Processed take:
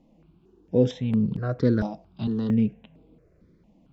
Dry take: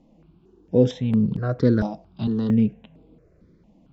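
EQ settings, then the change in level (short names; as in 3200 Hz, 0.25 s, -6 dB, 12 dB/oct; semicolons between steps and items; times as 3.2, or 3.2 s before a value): bell 2400 Hz +2 dB; -3.0 dB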